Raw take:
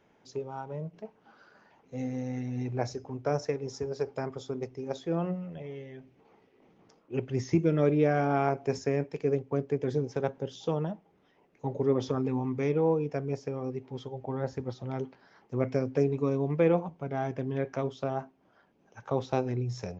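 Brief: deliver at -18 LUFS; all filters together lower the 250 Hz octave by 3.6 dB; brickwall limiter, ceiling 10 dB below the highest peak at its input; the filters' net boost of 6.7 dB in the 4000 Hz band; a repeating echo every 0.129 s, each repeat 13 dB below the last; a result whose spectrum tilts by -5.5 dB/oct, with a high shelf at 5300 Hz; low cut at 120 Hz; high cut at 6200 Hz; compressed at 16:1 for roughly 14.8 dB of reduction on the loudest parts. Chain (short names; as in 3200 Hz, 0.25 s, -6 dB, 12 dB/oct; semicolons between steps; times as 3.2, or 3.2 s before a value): HPF 120 Hz; LPF 6200 Hz; bell 250 Hz -4.5 dB; bell 4000 Hz +6 dB; high shelf 5300 Hz +8.5 dB; compressor 16:1, threshold -36 dBFS; limiter -33 dBFS; feedback echo 0.129 s, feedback 22%, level -13 dB; gain +26 dB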